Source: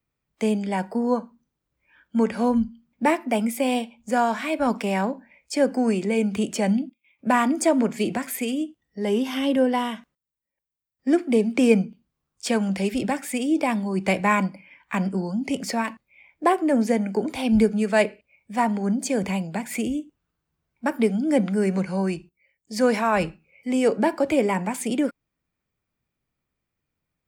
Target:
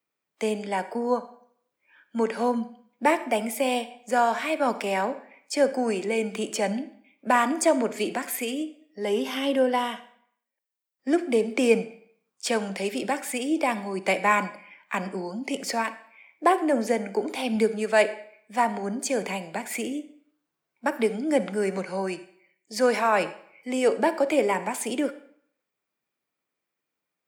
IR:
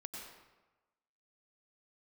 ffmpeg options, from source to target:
-filter_complex "[0:a]highpass=340,asplit=2[s0][s1];[1:a]atrim=start_sample=2205,asetrate=79380,aresample=44100[s2];[s1][s2]afir=irnorm=-1:irlink=0,volume=0.75[s3];[s0][s3]amix=inputs=2:normalize=0,volume=0.841"

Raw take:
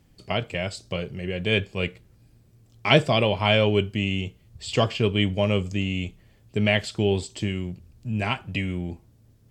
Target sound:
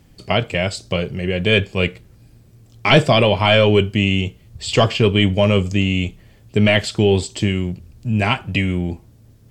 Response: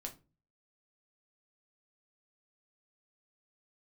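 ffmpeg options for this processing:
-af "apsyclip=4.47,volume=0.596"

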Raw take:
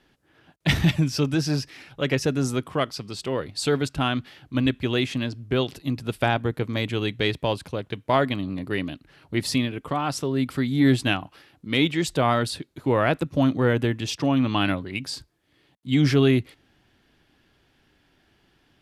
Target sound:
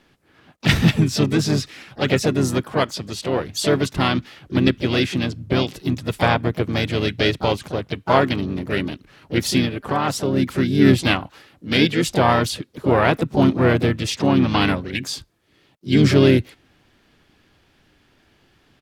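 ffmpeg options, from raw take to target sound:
-filter_complex "[0:a]asplit=4[s0][s1][s2][s3];[s1]asetrate=33038,aresample=44100,atempo=1.33484,volume=0.398[s4];[s2]asetrate=58866,aresample=44100,atempo=0.749154,volume=0.355[s5];[s3]asetrate=66075,aresample=44100,atempo=0.66742,volume=0.2[s6];[s0][s4][s5][s6]amix=inputs=4:normalize=0,volume=1.5"

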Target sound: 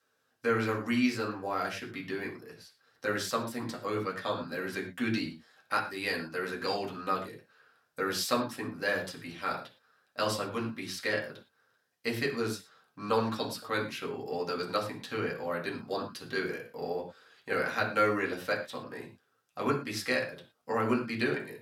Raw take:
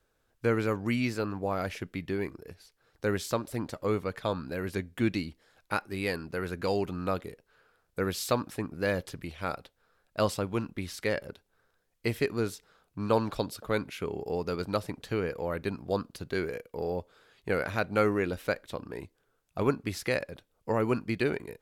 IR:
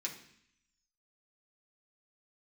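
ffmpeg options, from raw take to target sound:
-filter_complex "[0:a]highpass=f=280:p=1[s0];[1:a]atrim=start_sample=2205,afade=t=out:st=0.14:d=0.01,atrim=end_sample=6615,asetrate=32634,aresample=44100[s1];[s0][s1]afir=irnorm=-1:irlink=0"

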